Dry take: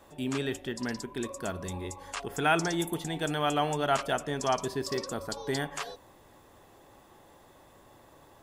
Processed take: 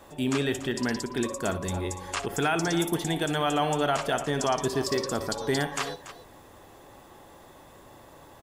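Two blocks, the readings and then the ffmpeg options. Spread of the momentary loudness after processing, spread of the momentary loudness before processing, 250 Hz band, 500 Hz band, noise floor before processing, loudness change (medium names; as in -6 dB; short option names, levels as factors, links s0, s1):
6 LU, 11 LU, +5.0 dB, +4.0 dB, -57 dBFS, +3.5 dB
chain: -filter_complex "[0:a]alimiter=limit=0.0841:level=0:latency=1:release=124,asplit=2[s0][s1];[s1]aecho=0:1:64|286:0.2|0.2[s2];[s0][s2]amix=inputs=2:normalize=0,volume=1.88"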